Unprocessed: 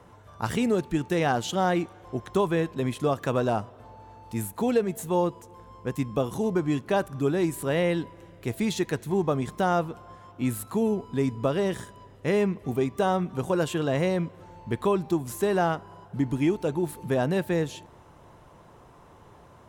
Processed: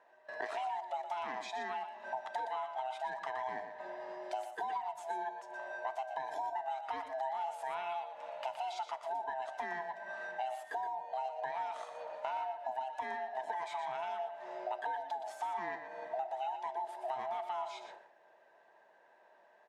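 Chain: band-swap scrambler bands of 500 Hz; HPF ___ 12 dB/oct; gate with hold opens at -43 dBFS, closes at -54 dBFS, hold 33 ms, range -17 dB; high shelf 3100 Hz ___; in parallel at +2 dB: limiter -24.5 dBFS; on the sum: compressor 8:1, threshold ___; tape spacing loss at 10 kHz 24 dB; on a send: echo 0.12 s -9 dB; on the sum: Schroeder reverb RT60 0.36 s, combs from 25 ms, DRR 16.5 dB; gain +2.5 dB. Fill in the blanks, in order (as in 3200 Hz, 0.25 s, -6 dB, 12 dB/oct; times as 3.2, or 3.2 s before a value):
690 Hz, +3.5 dB, -37 dBFS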